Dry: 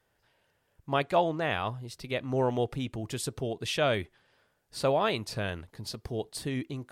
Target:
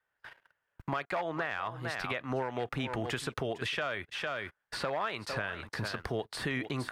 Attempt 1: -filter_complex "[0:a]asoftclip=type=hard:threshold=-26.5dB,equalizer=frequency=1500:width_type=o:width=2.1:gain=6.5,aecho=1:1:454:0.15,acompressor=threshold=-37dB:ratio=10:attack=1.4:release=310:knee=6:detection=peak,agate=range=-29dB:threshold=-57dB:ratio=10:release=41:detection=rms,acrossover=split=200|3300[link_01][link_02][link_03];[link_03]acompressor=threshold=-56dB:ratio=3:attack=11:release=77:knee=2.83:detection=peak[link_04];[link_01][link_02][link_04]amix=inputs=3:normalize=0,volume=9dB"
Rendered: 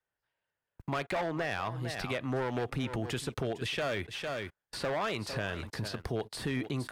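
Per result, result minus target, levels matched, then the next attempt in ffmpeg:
hard clipping: distortion +9 dB; 2,000 Hz band −2.5 dB
-filter_complex "[0:a]asoftclip=type=hard:threshold=-20.5dB,equalizer=frequency=1500:width_type=o:width=2.1:gain=6.5,aecho=1:1:454:0.15,acompressor=threshold=-37dB:ratio=10:attack=1.4:release=310:knee=6:detection=peak,agate=range=-29dB:threshold=-57dB:ratio=10:release=41:detection=rms,acrossover=split=200|3300[link_01][link_02][link_03];[link_03]acompressor=threshold=-56dB:ratio=3:attack=11:release=77:knee=2.83:detection=peak[link_04];[link_01][link_02][link_04]amix=inputs=3:normalize=0,volume=9dB"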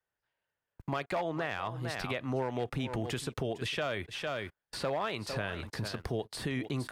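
2,000 Hz band −3.0 dB
-filter_complex "[0:a]asoftclip=type=hard:threshold=-20.5dB,equalizer=frequency=1500:width_type=o:width=2.1:gain=16.5,aecho=1:1:454:0.15,acompressor=threshold=-37dB:ratio=10:attack=1.4:release=310:knee=6:detection=peak,agate=range=-29dB:threshold=-57dB:ratio=10:release=41:detection=rms,acrossover=split=200|3300[link_01][link_02][link_03];[link_03]acompressor=threshold=-56dB:ratio=3:attack=11:release=77:knee=2.83:detection=peak[link_04];[link_01][link_02][link_04]amix=inputs=3:normalize=0,volume=9dB"

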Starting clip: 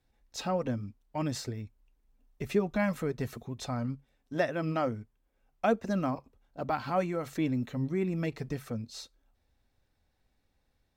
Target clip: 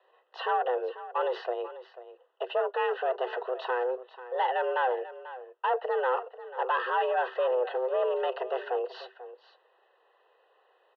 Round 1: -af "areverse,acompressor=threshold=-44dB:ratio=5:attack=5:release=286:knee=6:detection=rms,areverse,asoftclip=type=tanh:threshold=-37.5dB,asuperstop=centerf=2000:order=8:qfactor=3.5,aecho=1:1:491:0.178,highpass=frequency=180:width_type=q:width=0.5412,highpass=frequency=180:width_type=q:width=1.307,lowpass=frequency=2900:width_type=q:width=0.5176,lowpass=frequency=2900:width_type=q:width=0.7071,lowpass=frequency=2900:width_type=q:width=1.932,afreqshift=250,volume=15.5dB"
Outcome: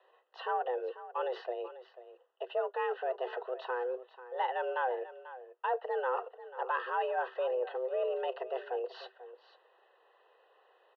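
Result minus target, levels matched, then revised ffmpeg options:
downward compressor: peak gain reduction +9 dB
-af "areverse,acompressor=threshold=-33dB:ratio=5:attack=5:release=286:knee=6:detection=rms,areverse,asoftclip=type=tanh:threshold=-37.5dB,asuperstop=centerf=2000:order=8:qfactor=3.5,aecho=1:1:491:0.178,highpass=frequency=180:width_type=q:width=0.5412,highpass=frequency=180:width_type=q:width=1.307,lowpass=frequency=2900:width_type=q:width=0.5176,lowpass=frequency=2900:width_type=q:width=0.7071,lowpass=frequency=2900:width_type=q:width=1.932,afreqshift=250,volume=15.5dB"

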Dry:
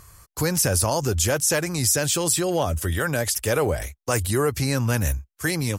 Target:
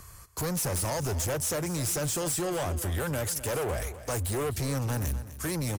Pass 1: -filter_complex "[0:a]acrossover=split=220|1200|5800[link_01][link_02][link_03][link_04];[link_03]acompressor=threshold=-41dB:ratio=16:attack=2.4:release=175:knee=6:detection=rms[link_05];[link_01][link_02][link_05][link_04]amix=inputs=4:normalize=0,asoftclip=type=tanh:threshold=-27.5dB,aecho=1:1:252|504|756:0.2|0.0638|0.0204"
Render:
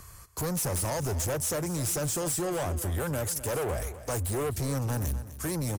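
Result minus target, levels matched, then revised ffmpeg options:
downward compressor: peak gain reduction +7.5 dB
-filter_complex "[0:a]acrossover=split=220|1200|5800[link_01][link_02][link_03][link_04];[link_03]acompressor=threshold=-33dB:ratio=16:attack=2.4:release=175:knee=6:detection=rms[link_05];[link_01][link_02][link_05][link_04]amix=inputs=4:normalize=0,asoftclip=type=tanh:threshold=-27.5dB,aecho=1:1:252|504|756:0.2|0.0638|0.0204"

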